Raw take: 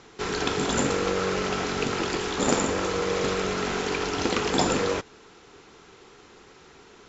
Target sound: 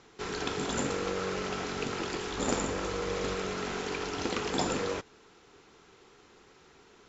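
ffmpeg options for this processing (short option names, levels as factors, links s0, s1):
-filter_complex "[0:a]asettb=1/sr,asplit=3[s0][s1][s2];[s0]atrim=end=2.324[s3];[s1]atrim=start=2.32:end=3.35,asetpts=PTS-STARTPTS,afade=t=in:d=0.004:c=qsin,afade=t=out:st=1.026:d=0.004:c=qsin,aeval=exprs='val(0)+0.0158*(sin(2*PI*50*n/s)+sin(2*PI*2*50*n/s)/2+sin(2*PI*3*50*n/s)/3+sin(2*PI*4*50*n/s)/4+sin(2*PI*5*50*n/s)/5)':c=same[s4];[s2]atrim=start=3.346[s5];[s3][s4]acrossfade=d=0.004:c1=hsin:c2=qsin[s6];[s6][s5]acrossfade=d=0.004:c1=qsin:c2=hsin,volume=0.447"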